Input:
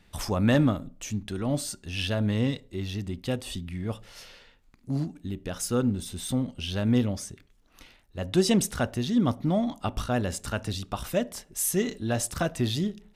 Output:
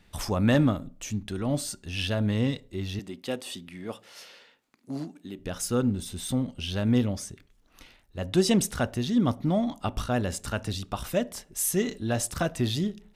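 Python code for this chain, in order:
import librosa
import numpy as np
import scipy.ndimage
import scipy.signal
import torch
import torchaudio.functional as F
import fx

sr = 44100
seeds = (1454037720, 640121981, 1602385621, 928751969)

y = fx.highpass(x, sr, hz=260.0, slope=12, at=(2.99, 5.39))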